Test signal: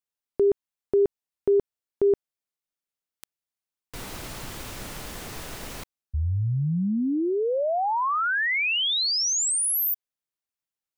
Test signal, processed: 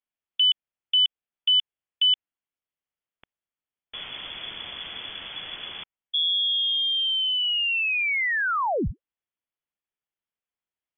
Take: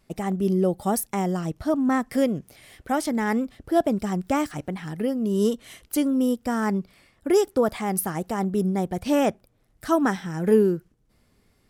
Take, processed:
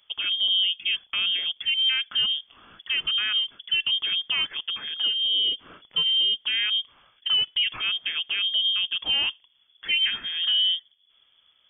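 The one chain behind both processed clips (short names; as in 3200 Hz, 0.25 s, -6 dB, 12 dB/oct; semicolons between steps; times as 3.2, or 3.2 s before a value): limiter -15.5 dBFS; inverted band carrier 3400 Hz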